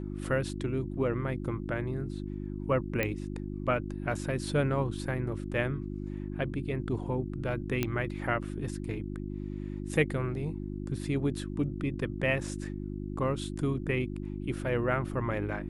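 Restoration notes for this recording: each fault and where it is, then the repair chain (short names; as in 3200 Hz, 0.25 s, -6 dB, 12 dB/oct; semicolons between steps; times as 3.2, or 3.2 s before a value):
hum 50 Hz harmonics 7 -37 dBFS
3.03 pop -15 dBFS
7.83 pop -14 dBFS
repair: de-click; de-hum 50 Hz, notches 7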